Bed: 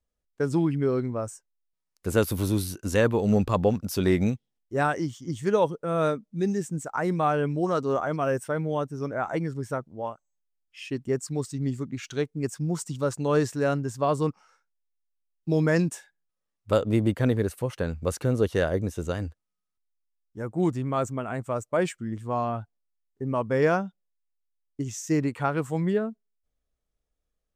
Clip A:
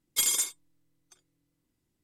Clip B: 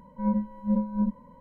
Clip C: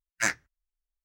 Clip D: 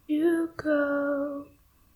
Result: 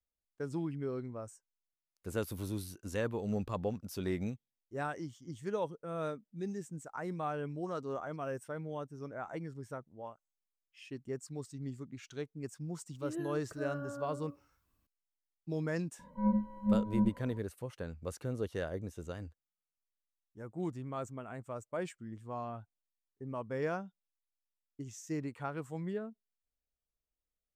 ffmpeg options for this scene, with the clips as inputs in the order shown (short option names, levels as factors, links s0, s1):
-filter_complex "[0:a]volume=0.224[s0];[4:a]atrim=end=1.95,asetpts=PTS-STARTPTS,volume=0.158,afade=t=in:d=0.004:c=hsin,afade=t=out:st=1.946:d=0.004:c=hsin,adelay=12920[s1];[2:a]atrim=end=1.4,asetpts=PTS-STARTPTS,volume=0.631,afade=t=in:d=0.004:c=hsin,afade=t=out:st=1.396:d=0.004:c=hsin,adelay=15990[s2];[s0][s1][s2]amix=inputs=3:normalize=0"